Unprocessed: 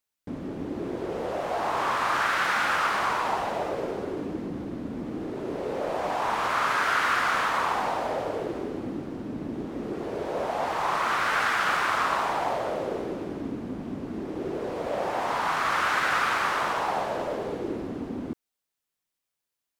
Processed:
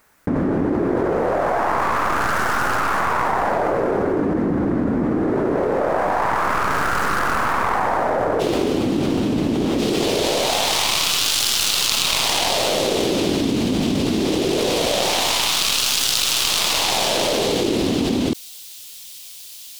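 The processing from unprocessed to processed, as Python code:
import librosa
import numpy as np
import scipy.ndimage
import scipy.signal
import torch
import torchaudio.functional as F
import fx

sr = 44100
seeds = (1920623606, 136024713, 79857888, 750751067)

y = fx.tracing_dist(x, sr, depth_ms=0.45)
y = fx.high_shelf_res(y, sr, hz=2300.0, db=fx.steps((0.0, -9.0), (8.39, 7.5), (9.78, 13.5)), q=1.5)
y = fx.env_flatten(y, sr, amount_pct=100)
y = y * 10.0 ** (-6.5 / 20.0)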